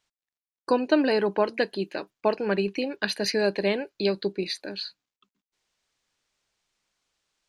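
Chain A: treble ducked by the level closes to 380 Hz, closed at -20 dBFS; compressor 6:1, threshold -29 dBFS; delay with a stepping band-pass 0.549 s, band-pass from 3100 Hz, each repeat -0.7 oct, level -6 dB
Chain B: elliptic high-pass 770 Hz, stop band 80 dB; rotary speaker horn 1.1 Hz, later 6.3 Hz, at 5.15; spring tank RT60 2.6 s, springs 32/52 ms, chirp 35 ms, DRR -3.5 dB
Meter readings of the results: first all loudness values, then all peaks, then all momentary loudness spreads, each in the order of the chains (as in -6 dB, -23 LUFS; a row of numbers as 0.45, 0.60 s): -35.5, -31.5 LUFS; -15.0, -15.5 dBFS; 20, 12 LU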